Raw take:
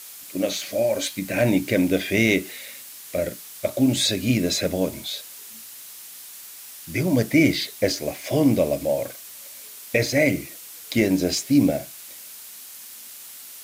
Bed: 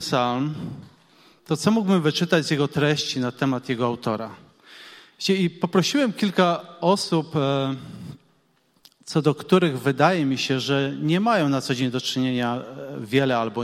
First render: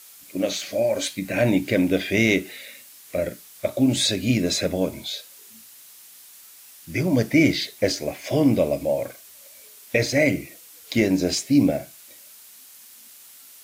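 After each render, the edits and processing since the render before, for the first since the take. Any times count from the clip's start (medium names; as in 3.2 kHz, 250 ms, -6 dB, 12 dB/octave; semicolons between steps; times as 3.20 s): noise print and reduce 6 dB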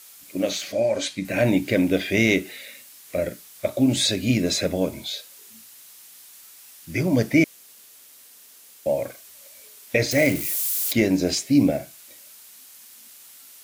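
0.72–1.25 s: low-pass 7.8 kHz; 7.44–8.86 s: room tone; 10.11–10.93 s: zero-crossing glitches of -22 dBFS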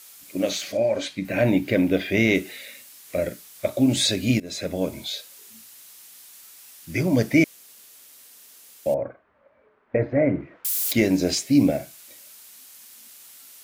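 0.77–2.35 s: peaking EQ 8.1 kHz -8 dB 1.7 oct; 4.40–5.14 s: fade in equal-power, from -21.5 dB; 8.94–10.65 s: low-pass 1.5 kHz 24 dB/octave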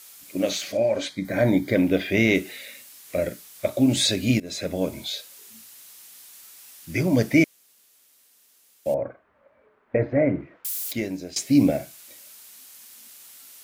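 1.09–1.75 s: Butterworth band-stop 2.7 kHz, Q 3.3; 7.42–8.94 s: upward expansion, over -37 dBFS; 10.17–11.36 s: fade out, to -18 dB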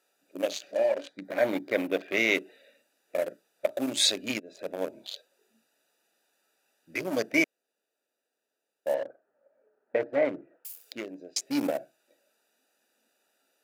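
local Wiener filter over 41 samples; high-pass 520 Hz 12 dB/octave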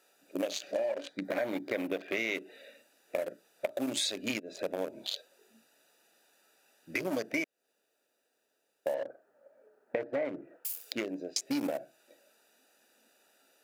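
in parallel at 0 dB: peak limiter -21 dBFS, peak gain reduction 10.5 dB; on the sum: compression 6:1, threshold -30 dBFS, peak gain reduction 13.5 dB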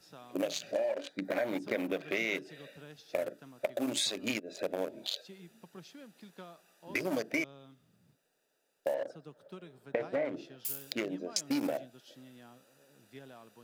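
add bed -31 dB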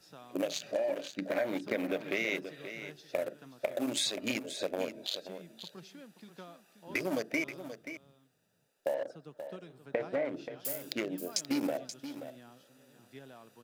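delay 530 ms -11 dB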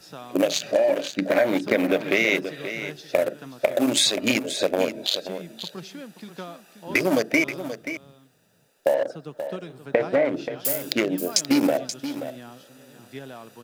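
trim +12 dB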